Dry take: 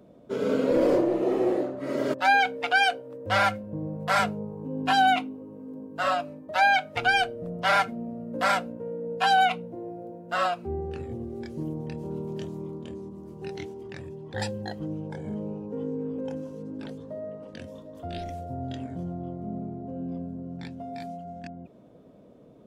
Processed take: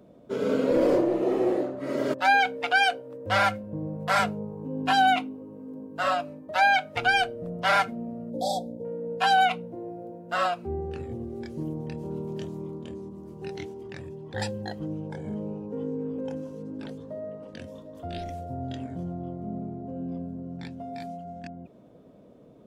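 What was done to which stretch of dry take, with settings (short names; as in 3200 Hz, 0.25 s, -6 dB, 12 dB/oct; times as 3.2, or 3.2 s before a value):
8.3–8.85 brick-wall FIR band-stop 920–3300 Hz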